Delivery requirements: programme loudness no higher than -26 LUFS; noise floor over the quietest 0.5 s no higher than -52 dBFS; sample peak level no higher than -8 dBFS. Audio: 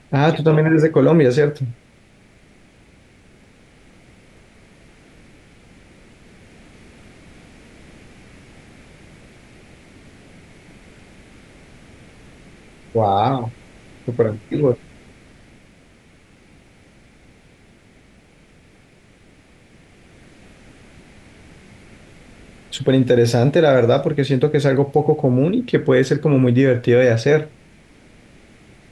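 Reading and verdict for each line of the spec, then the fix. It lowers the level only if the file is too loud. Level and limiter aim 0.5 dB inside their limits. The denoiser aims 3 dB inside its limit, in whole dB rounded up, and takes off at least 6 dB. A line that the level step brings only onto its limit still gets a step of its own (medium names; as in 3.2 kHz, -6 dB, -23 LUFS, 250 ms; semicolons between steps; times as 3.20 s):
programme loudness -16.5 LUFS: fail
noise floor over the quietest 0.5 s -51 dBFS: fail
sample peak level -4.5 dBFS: fail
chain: trim -10 dB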